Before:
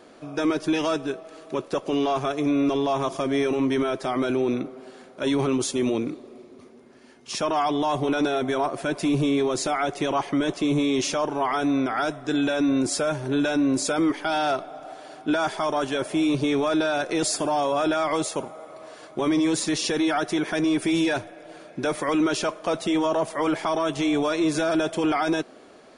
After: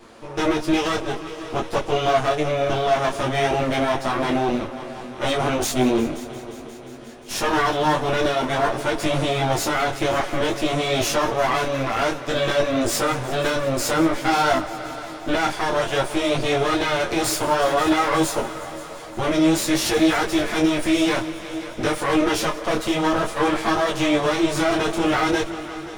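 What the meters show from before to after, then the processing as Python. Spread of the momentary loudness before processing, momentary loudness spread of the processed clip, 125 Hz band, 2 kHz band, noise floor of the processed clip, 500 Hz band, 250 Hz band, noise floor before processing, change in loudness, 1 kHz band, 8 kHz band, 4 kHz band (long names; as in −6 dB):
8 LU, 11 LU, +5.0 dB, +6.0 dB, −36 dBFS, +3.5 dB, +0.5 dB, −49 dBFS, +3.0 dB, +5.0 dB, +3.5 dB, +5.0 dB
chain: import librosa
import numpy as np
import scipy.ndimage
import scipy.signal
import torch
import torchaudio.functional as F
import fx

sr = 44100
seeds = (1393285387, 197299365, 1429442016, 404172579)

y = fx.lower_of_two(x, sr, delay_ms=8.8)
y = fx.echo_heads(y, sr, ms=177, heads='all three', feedback_pct=62, wet_db=-19.5)
y = fx.detune_double(y, sr, cents=19)
y = y * librosa.db_to_amplitude(8.5)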